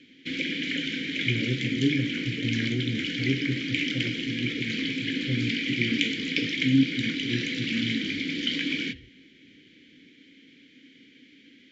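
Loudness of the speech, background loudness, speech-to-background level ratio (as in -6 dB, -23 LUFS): -31.5 LUFS, -28.5 LUFS, -3.0 dB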